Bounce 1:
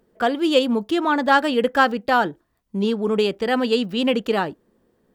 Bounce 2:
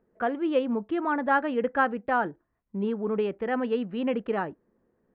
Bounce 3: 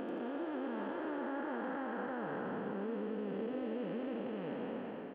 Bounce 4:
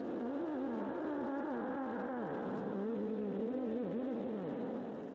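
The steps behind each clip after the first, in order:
low-pass 2.2 kHz 24 dB/octave; trim -7 dB
spectral blur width 1270 ms; compression 5:1, threshold -39 dBFS, peak gain reduction 8.5 dB; frequency-shifting echo 88 ms, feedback 54%, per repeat +54 Hz, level -6 dB; trim +1 dB
distance through air 440 m; trim +1 dB; Speex 13 kbps 16 kHz

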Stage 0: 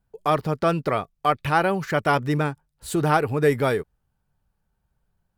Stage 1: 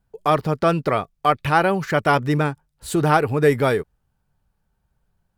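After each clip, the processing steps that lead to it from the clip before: treble shelf 11 kHz -2.5 dB; trim +3 dB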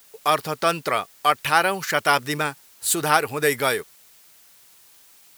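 added noise pink -59 dBFS; tilt EQ +4 dB/octave; trim -1 dB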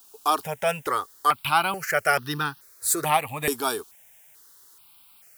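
stepped phaser 2.3 Hz 540–2200 Hz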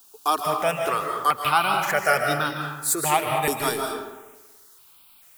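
algorithmic reverb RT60 1.1 s, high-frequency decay 0.6×, pre-delay 110 ms, DRR 2 dB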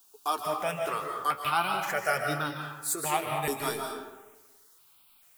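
flange 0.42 Hz, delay 6 ms, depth 8.8 ms, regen +53%; trim -3 dB

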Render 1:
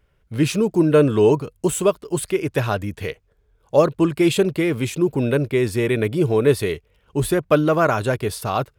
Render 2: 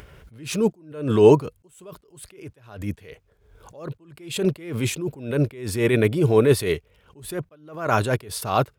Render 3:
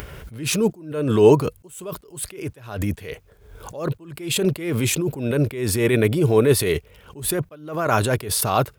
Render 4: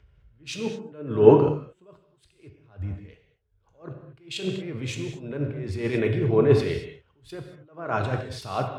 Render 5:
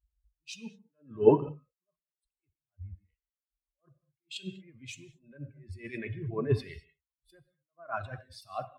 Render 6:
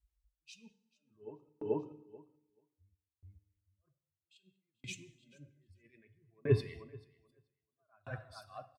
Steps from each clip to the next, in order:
high-pass 51 Hz 12 dB/octave; upward compressor, threshold -35 dBFS; attacks held to a fixed rise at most 100 dB/s; trim +3 dB
treble shelf 10 kHz +8 dB; in parallel at -2 dB: compressor with a negative ratio -31 dBFS, ratio -1
distance through air 160 m; on a send at -2.5 dB: reverberation, pre-delay 3 ms; on the sum: three bands expanded up and down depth 100%; trim -9 dB
expander on every frequency bin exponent 2; trim -4.5 dB
feedback delay 434 ms, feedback 31%, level -13 dB; FDN reverb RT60 1.4 s, low-frequency decay 1.2×, high-frequency decay 0.85×, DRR 15 dB; sawtooth tremolo in dB decaying 0.62 Hz, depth 38 dB; trim +1 dB

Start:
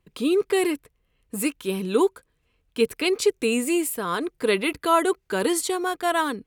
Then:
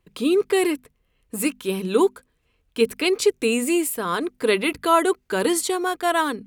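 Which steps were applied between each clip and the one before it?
hum notches 50/100/150/200/250 Hz; trim +2 dB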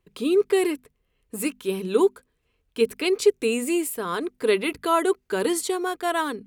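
peaking EQ 410 Hz +5 dB 0.29 oct; trim -4 dB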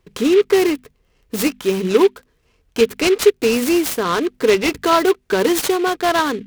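in parallel at +2 dB: compression, threshold -27 dBFS, peak gain reduction 14.5 dB; on the sum: delay time shaken by noise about 2.3 kHz, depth 0.038 ms; trim +3.5 dB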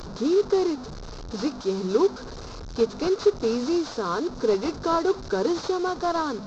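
one-bit delta coder 32 kbps, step -23 dBFS; high-order bell 2.4 kHz -13 dB 1.1 oct; trim -7.5 dB

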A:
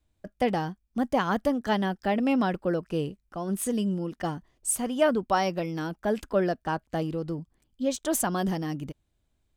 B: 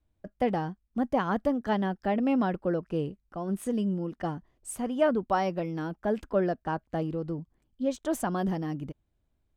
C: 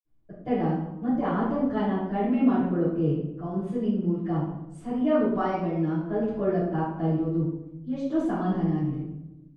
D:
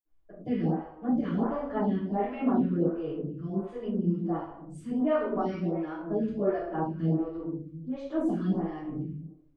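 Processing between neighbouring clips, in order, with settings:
treble shelf 2.9 kHz -12 dB; trim -1 dB
reverberation RT60 0.95 s, pre-delay 47 ms
lamp-driven phase shifter 1.4 Hz

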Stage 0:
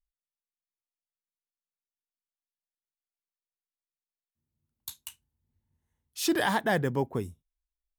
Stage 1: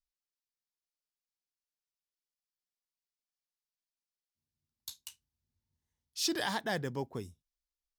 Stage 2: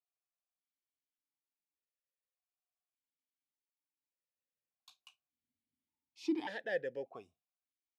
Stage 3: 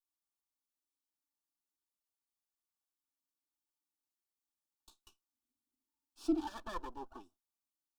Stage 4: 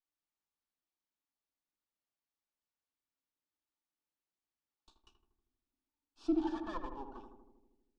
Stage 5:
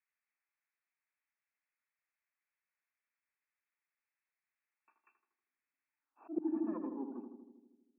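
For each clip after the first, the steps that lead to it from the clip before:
peaking EQ 5 kHz +11.5 dB 1.1 oct; trim -8.5 dB
stepped vowel filter 1.7 Hz; trim +6.5 dB
comb filter that takes the minimum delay 3.4 ms; static phaser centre 550 Hz, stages 6; trim +2.5 dB
distance through air 120 m; filtered feedback delay 79 ms, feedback 71%, low-pass 1.1 kHz, level -5 dB
band-pass sweep 2 kHz -> 250 Hz, 5.97–6.52 s; slow attack 247 ms; FFT band-pass 180–2700 Hz; trim +11.5 dB

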